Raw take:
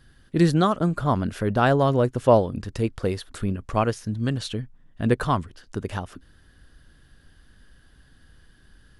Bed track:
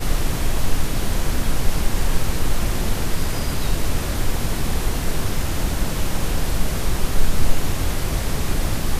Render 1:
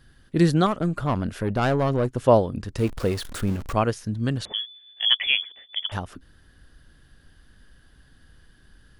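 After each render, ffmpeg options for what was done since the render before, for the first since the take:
-filter_complex "[0:a]asettb=1/sr,asplit=3[a][b][c];[a]atrim=end=0.664[d];[b]atrim=start=0.66:end=2.17,asetpts=PTS-STARTPTS,afade=t=in:d=0.004:c=qsin,afade=t=out:st=1.506:d=0.004:c=qsin,aeval=exprs='(tanh(6.31*val(0)+0.35)-tanh(0.35))/6.31':c=same[e];[c]atrim=start=2.166[f];[d][e]acrossfade=d=0.004:c1=hsin:c2=qsin[g];[g][f]acrossfade=d=0.004:c1=qsin:c2=hsin,asettb=1/sr,asplit=3[h][i][j];[h]atrim=end=2.784[k];[i]atrim=start=2.78:end=3.74,asetpts=PTS-STARTPTS,afade=t=in:d=0.004:c=qsin,afade=t=out:st=0.956:d=0.004:c=qsin,aeval=exprs='val(0)+0.5*0.0237*sgn(val(0))':c=same[l];[j]atrim=start=3.736[m];[k][l]acrossfade=d=0.004:c1=hsin:c2=qsin[n];[n][m]acrossfade=d=0.004:c1=qsin:c2=hsin,asettb=1/sr,asplit=3[o][p][q];[o]atrim=end=4.454[r];[p]atrim=start=4.45:end=5.92,asetpts=PTS-STARTPTS,afade=t=in:d=0.004:c=qsin,afade=t=out:st=1.466:d=0.004:c=qsin,lowpass=f=3k:t=q:w=0.5098,lowpass=f=3k:t=q:w=0.6013,lowpass=f=3k:t=q:w=0.9,lowpass=f=3k:t=q:w=2.563,afreqshift=-3500[s];[q]atrim=start=5.916[t];[r][s]acrossfade=d=0.004:c1=hsin:c2=qsin[u];[u][t]acrossfade=d=0.004:c1=qsin:c2=hsin"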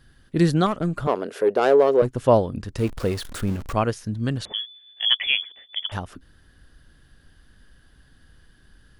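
-filter_complex "[0:a]asettb=1/sr,asplit=3[a][b][c];[a]atrim=end=1.074[d];[b]atrim=start=1.07:end=2.02,asetpts=PTS-STARTPTS,afade=t=in:d=0.004:c=qsin,afade=t=out:st=0.946:d=0.004:c=qsin,highpass=f=430:t=q:w=4.4[e];[c]atrim=start=2.016[f];[d][e]acrossfade=d=0.004:c1=hsin:c2=qsin[g];[g][f]acrossfade=d=0.004:c1=qsin:c2=hsin"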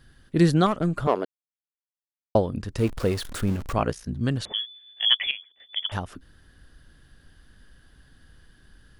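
-filter_complex "[0:a]asettb=1/sr,asplit=3[a][b][c];[a]atrim=end=3.774[d];[b]atrim=start=3.77:end=4.21,asetpts=PTS-STARTPTS,afade=t=in:d=0.004:c=qsin,afade=t=out:st=0.436:d=0.004:c=qsin,aeval=exprs='val(0)*sin(2*PI*30*n/s)':c=same[e];[c]atrim=start=4.206[f];[d][e]acrossfade=d=0.004:c1=hsin:c2=qsin[g];[g][f]acrossfade=d=0.004:c1=qsin:c2=hsin,asplit=5[h][i][j][k][l];[h]atrim=end=1.25,asetpts=PTS-STARTPTS,afade=t=out:st=1.246:d=0.004:c=hsin[m];[i]atrim=start=1.25:end=2.35,asetpts=PTS-STARTPTS,volume=0[n];[j]atrim=start=2.35:end=5.31,asetpts=PTS-STARTPTS,afade=t=in:d=0.004:c=hsin,afade=t=out:st=2.67:d=0.29:c=log:silence=0.177828[o];[k]atrim=start=5.31:end=5.6,asetpts=PTS-STARTPTS,volume=-15dB[p];[l]atrim=start=5.6,asetpts=PTS-STARTPTS,afade=t=in:d=0.29:c=log:silence=0.177828[q];[m][n][o][p][q]concat=n=5:v=0:a=1"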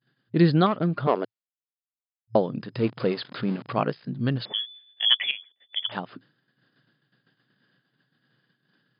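-af "agate=range=-33dB:threshold=-44dB:ratio=3:detection=peak,afftfilt=real='re*between(b*sr/4096,110,5100)':imag='im*between(b*sr/4096,110,5100)':win_size=4096:overlap=0.75"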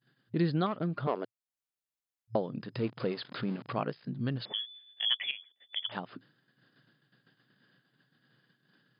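-af "acompressor=threshold=-43dB:ratio=1.5"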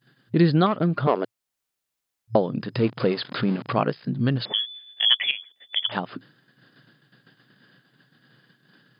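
-af "volume=10.5dB"

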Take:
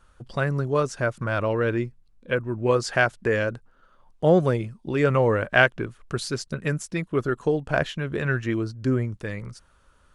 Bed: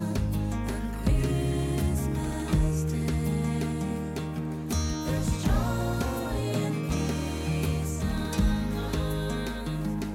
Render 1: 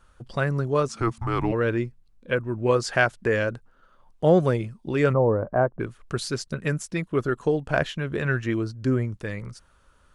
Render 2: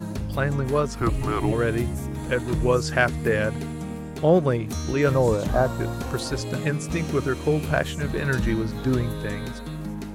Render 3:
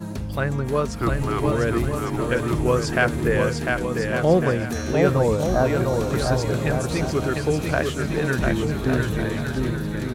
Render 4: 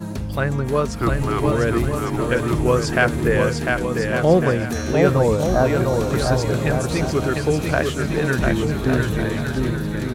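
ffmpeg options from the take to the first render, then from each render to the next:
-filter_complex "[0:a]asplit=3[a][b][c];[a]afade=t=out:st=0.88:d=0.02[d];[b]afreqshift=-240,afade=t=in:st=0.88:d=0.02,afade=t=out:st=1.51:d=0.02[e];[c]afade=t=in:st=1.51:d=0.02[f];[d][e][f]amix=inputs=3:normalize=0,asplit=3[g][h][i];[g]afade=t=out:st=5.12:d=0.02[j];[h]lowpass=f=1k:w=0.5412,lowpass=f=1k:w=1.3066,afade=t=in:st=5.12:d=0.02,afade=t=out:st=5.79:d=0.02[k];[i]afade=t=in:st=5.79:d=0.02[l];[j][k][l]amix=inputs=3:normalize=0"
-filter_complex "[1:a]volume=-2dB[a];[0:a][a]amix=inputs=2:normalize=0"
-af "aecho=1:1:700|1155|1451|1643|1768:0.631|0.398|0.251|0.158|0.1"
-af "volume=2.5dB"

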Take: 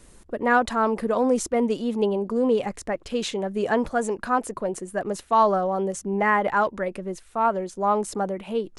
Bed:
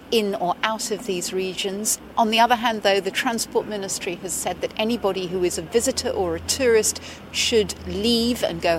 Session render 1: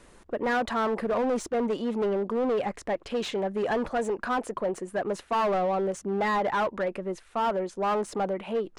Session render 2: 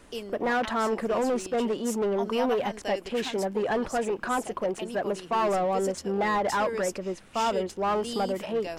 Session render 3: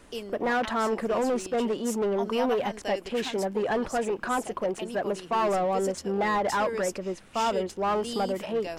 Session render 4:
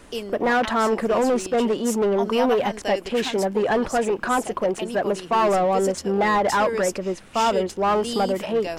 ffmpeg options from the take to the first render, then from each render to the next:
-filter_complex "[0:a]volume=21dB,asoftclip=hard,volume=-21dB,asplit=2[a][b];[b]highpass=f=720:p=1,volume=10dB,asoftclip=type=tanh:threshold=-20.5dB[c];[a][c]amix=inputs=2:normalize=0,lowpass=f=1.7k:p=1,volume=-6dB"
-filter_complex "[1:a]volume=-16.5dB[a];[0:a][a]amix=inputs=2:normalize=0"
-af anull
-af "volume=6dB"

